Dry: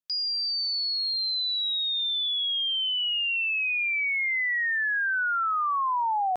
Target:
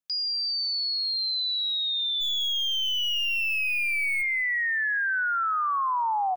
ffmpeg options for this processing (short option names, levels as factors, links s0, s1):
-filter_complex "[0:a]asplit=3[s0][s1][s2];[s0]afade=t=out:st=2.2:d=0.02[s3];[s1]aeval=exprs='0.0668*(cos(1*acos(clip(val(0)/0.0668,-1,1)))-cos(1*PI/2))+0.00668*(cos(4*acos(clip(val(0)/0.0668,-1,1)))-cos(4*PI/2))+0.000668*(cos(6*acos(clip(val(0)/0.0668,-1,1)))-cos(6*PI/2))+0.00596*(cos(8*acos(clip(val(0)/0.0668,-1,1)))-cos(8*PI/2))':c=same,afade=t=in:st=2.2:d=0.02,afade=t=out:st=4.21:d=0.02[s4];[s2]afade=t=in:st=4.21:d=0.02[s5];[s3][s4][s5]amix=inputs=3:normalize=0,asplit=2[s6][s7];[s7]aecho=0:1:202|404|606|808:0.126|0.0554|0.0244|0.0107[s8];[s6][s8]amix=inputs=2:normalize=0"